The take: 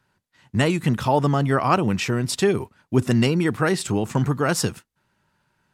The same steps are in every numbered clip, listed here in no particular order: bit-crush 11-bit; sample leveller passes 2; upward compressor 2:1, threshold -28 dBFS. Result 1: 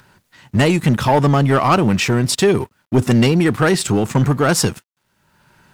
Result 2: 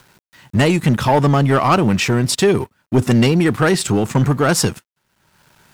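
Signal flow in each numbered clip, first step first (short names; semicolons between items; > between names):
sample leveller > upward compressor > bit-crush; bit-crush > sample leveller > upward compressor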